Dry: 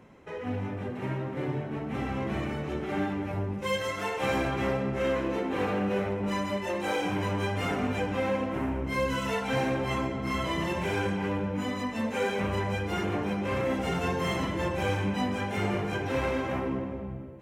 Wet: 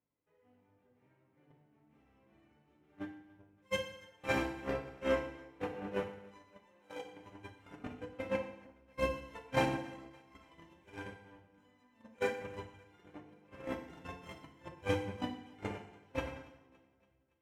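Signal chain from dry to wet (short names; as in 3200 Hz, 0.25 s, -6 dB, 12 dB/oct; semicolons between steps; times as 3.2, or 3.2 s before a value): gate -23 dBFS, range -52 dB; thinning echo 0.283 s, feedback 50%, high-pass 360 Hz, level -22.5 dB; FDN reverb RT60 0.78 s, low-frequency decay 1.1×, high-frequency decay 0.95×, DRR 3 dB; gain +14 dB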